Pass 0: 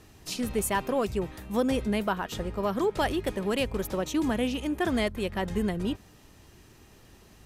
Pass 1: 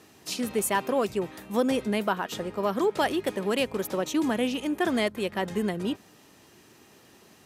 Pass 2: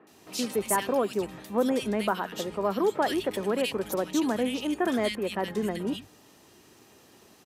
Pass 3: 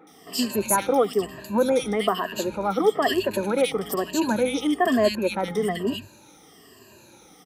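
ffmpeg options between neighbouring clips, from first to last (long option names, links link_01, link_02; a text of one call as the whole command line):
ffmpeg -i in.wav -af "highpass=190,volume=2dB" out.wav
ffmpeg -i in.wav -filter_complex "[0:a]acrossover=split=150|2000[link_01][link_02][link_03];[link_03]adelay=70[link_04];[link_01]adelay=110[link_05];[link_05][link_02][link_04]amix=inputs=3:normalize=0" out.wav
ffmpeg -i in.wav -af "afftfilt=real='re*pow(10,17/40*sin(2*PI*(1.4*log(max(b,1)*sr/1024/100)/log(2)-(-1.1)*(pts-256)/sr)))':imag='im*pow(10,17/40*sin(2*PI*(1.4*log(max(b,1)*sr/1024/100)/log(2)-(-1.1)*(pts-256)/sr)))':win_size=1024:overlap=0.75,volume=2dB" out.wav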